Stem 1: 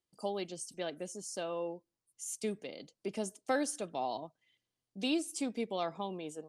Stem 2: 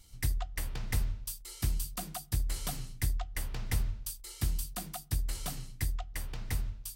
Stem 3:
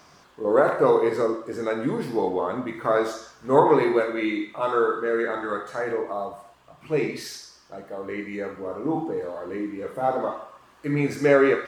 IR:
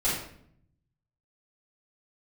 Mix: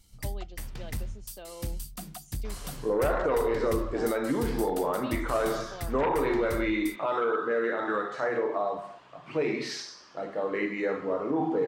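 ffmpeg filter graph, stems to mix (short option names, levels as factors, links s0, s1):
-filter_complex "[0:a]volume=0.447[s0];[1:a]asoftclip=type=tanh:threshold=0.075,equalizer=f=210:t=o:w=0.77:g=6,volume=0.75[s1];[2:a]bandreject=f=50:t=h:w=6,bandreject=f=100:t=h:w=6,bandreject=f=150:t=h:w=6,bandreject=f=200:t=h:w=6,bandreject=f=250:t=h:w=6,bandreject=f=300:t=h:w=6,bandreject=f=350:t=h:w=6,bandreject=f=400:t=h:w=6,bandreject=f=450:t=h:w=6,aeval=exprs='0.794*sin(PI/2*2.82*val(0)/0.794)':c=same,adelay=2450,volume=0.355[s2];[s0][s2]amix=inputs=2:normalize=0,highpass=130,lowpass=4900,alimiter=limit=0.112:level=0:latency=1:release=253,volume=1[s3];[s1][s3]amix=inputs=2:normalize=0"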